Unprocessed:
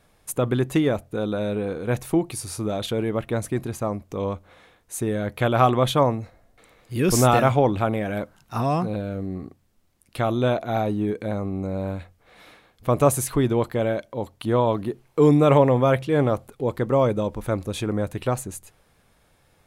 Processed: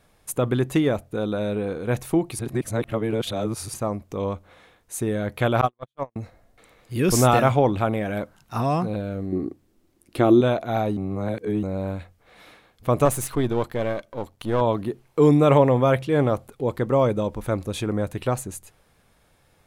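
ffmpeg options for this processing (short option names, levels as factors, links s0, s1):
-filter_complex "[0:a]asettb=1/sr,asplit=3[s0][s1][s2];[s0]atrim=end=5.614[s3];[s1]atrim=start=5.61:end=6.16,asetpts=PTS-STARTPTS,afade=t=in:d=0.004:c=qsin,afade=t=out:st=0.546:d=0.004:c=qsin,agate=range=0.001:threshold=0.178:ratio=16:release=100:detection=peak[s4];[s2]atrim=start=6.156[s5];[s3][s4]acrossfade=d=0.004:c1=hsin:c2=qsin[s6];[s6][s5]acrossfade=d=0.004:c1=qsin:c2=hsin,asettb=1/sr,asplit=3[s7][s8][s9];[s7]atrim=end=9.324[s10];[s8]atrim=start=9.32:end=10.41,asetpts=PTS-STARTPTS,afade=t=in:d=0.004:c=qsin,afade=t=out:st=1.086:d=0.004:c=qsin,equalizer=f=330:w=1.7:g=14.5[s11];[s9]atrim=start=10.406[s12];[s10][s11]acrossfade=d=0.004:c1=hsin:c2=qsin[s13];[s13][s12]acrossfade=d=0.004:c1=qsin:c2=hsin,asettb=1/sr,asplit=3[s14][s15][s16];[s14]atrim=end=13.054[s17];[s15]atrim=start=13.05:end=14.61,asetpts=PTS-STARTPTS,afade=t=in:d=0.004:c=qsin,afade=t=out:st=1.556:d=0.004:c=qsin,aeval=exprs='if(lt(val(0),0),0.447*val(0),val(0))':c=same[s18];[s16]atrim=start=14.606[s19];[s17][s18]acrossfade=d=0.004:c1=hsin:c2=qsin[s20];[s20][s19]acrossfade=d=0.004:c1=qsin:c2=hsin,asplit=5[s21][s22][s23][s24][s25];[s21]atrim=end=2.392[s26];[s22]atrim=start=2.388:end=3.742,asetpts=PTS-STARTPTS,areverse[s27];[s23]atrim=start=3.738:end=10.972[s28];[s24]atrim=start=10.968:end=11.632,asetpts=PTS-STARTPTS,areverse[s29];[s25]atrim=start=11.628[s30];[s26][s27]acrossfade=d=0.004:c1=hsin:c2=hsin[s31];[s31][s28]acrossfade=d=0.004:c1=hsin:c2=hsin[s32];[s32][s29]acrossfade=d=0.004:c1=hsin:c2=hsin[s33];[s33][s30]acrossfade=d=0.004:c1=hsin:c2=hsin"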